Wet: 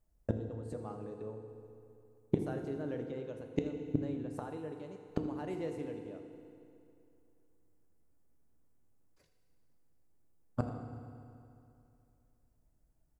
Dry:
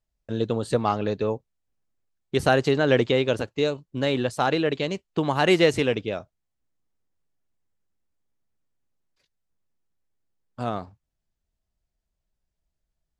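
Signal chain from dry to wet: EQ curve 370 Hz 0 dB, 1300 Hz -6 dB, 3600 Hz -16 dB, 5600 Hz -10 dB, 9600 Hz -3 dB; flipped gate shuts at -23 dBFS, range -27 dB; on a send: echo 82 ms -16.5 dB; on the sum: FDN reverb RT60 2.7 s, high-frequency decay 0.85×, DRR 4.5 dB; gain +7 dB

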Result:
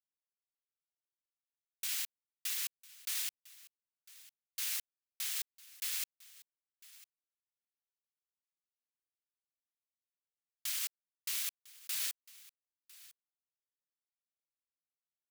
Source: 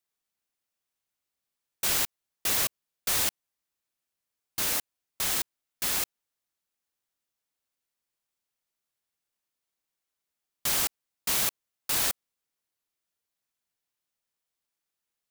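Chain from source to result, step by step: Wiener smoothing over 41 samples; Chebyshev high-pass 2300 Hz, order 2; limiter -21 dBFS, peak gain reduction 6 dB; echo 1.002 s -20.5 dB; gain -5 dB

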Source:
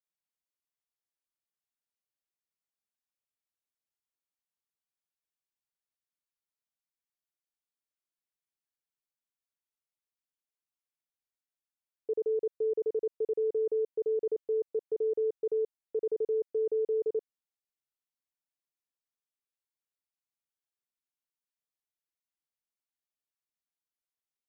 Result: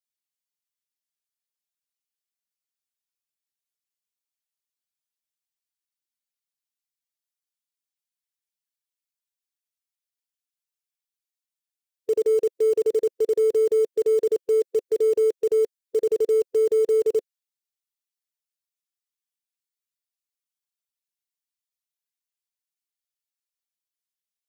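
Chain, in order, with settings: per-bin expansion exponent 1.5; in parallel at -6 dB: bit-crush 7-bit; on the sum: gain +6.5 dB

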